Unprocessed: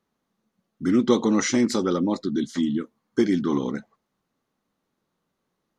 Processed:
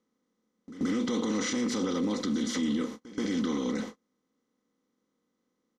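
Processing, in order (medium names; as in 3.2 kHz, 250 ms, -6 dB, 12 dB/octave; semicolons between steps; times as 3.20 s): spectral levelling over time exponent 0.4; gate -30 dBFS, range -36 dB; bass shelf 150 Hz +4.5 dB; comb 4 ms, depth 49%; dynamic bell 3.1 kHz, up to +5 dB, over -39 dBFS, Q 1.1; peak limiter -15.5 dBFS, peak gain reduction 13 dB; pre-echo 129 ms -16 dB; trim -6.5 dB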